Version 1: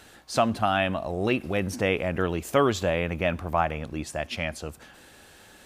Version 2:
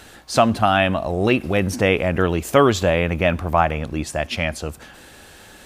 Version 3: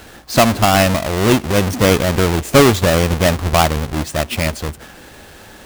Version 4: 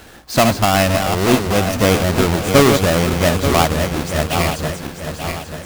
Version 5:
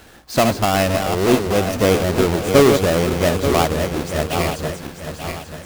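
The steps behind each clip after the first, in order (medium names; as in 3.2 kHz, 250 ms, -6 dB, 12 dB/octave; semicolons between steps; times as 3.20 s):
bass shelf 63 Hz +5 dB; trim +7 dB
square wave that keeps the level
backward echo that repeats 443 ms, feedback 65%, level -6 dB; trim -2 dB
dynamic bell 420 Hz, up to +6 dB, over -30 dBFS, Q 1.5; trim -4 dB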